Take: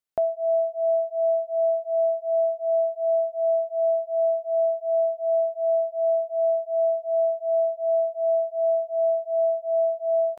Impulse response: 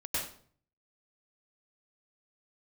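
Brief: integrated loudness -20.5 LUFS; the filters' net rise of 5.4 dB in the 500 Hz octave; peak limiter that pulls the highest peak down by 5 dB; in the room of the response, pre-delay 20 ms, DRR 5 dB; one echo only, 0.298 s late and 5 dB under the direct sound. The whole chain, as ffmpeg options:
-filter_complex "[0:a]equalizer=f=500:t=o:g=9,alimiter=limit=-16dB:level=0:latency=1,aecho=1:1:298:0.562,asplit=2[a][b];[1:a]atrim=start_sample=2205,adelay=20[c];[b][c]afir=irnorm=-1:irlink=0,volume=-10dB[d];[a][d]amix=inputs=2:normalize=0,volume=-5dB"

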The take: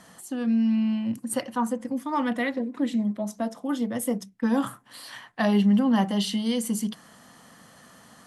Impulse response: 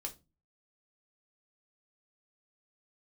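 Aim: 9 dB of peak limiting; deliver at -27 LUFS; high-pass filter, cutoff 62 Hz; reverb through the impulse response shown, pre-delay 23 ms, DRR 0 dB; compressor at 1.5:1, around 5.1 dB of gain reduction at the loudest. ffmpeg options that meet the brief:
-filter_complex "[0:a]highpass=62,acompressor=threshold=-31dB:ratio=1.5,alimiter=level_in=0.5dB:limit=-24dB:level=0:latency=1,volume=-0.5dB,asplit=2[a][b];[1:a]atrim=start_sample=2205,adelay=23[c];[b][c]afir=irnorm=-1:irlink=0,volume=2dB[d];[a][d]amix=inputs=2:normalize=0,volume=3.5dB"

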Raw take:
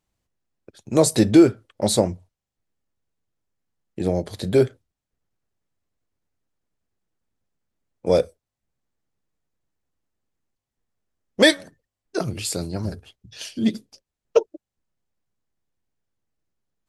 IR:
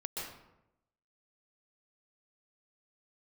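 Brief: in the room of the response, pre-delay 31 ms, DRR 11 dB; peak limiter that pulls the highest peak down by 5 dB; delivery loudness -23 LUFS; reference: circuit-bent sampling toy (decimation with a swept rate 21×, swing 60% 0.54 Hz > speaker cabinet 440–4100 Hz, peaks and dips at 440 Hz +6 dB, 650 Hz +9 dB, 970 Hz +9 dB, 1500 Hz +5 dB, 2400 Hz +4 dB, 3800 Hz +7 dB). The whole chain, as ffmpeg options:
-filter_complex "[0:a]alimiter=limit=-7.5dB:level=0:latency=1,asplit=2[a][b];[1:a]atrim=start_sample=2205,adelay=31[c];[b][c]afir=irnorm=-1:irlink=0,volume=-12.5dB[d];[a][d]amix=inputs=2:normalize=0,acrusher=samples=21:mix=1:aa=0.000001:lfo=1:lforange=12.6:lforate=0.54,highpass=440,equalizer=f=440:t=q:w=4:g=6,equalizer=f=650:t=q:w=4:g=9,equalizer=f=970:t=q:w=4:g=9,equalizer=f=1.5k:t=q:w=4:g=5,equalizer=f=2.4k:t=q:w=4:g=4,equalizer=f=3.8k:t=q:w=4:g=7,lowpass=f=4.1k:w=0.5412,lowpass=f=4.1k:w=1.3066,volume=-1.5dB"

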